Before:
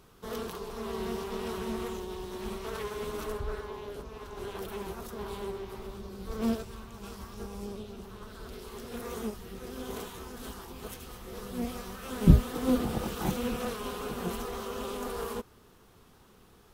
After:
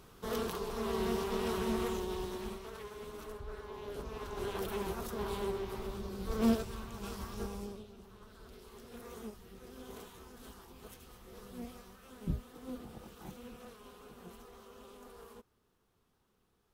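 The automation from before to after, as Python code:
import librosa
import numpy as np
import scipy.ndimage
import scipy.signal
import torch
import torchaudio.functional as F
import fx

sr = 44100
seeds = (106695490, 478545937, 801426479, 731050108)

y = fx.gain(x, sr, db=fx.line((2.24, 1.0), (2.72, -10.0), (3.46, -10.0), (4.09, 1.0), (7.46, 1.0), (7.9, -10.0), (11.54, -10.0), (12.29, -17.5)))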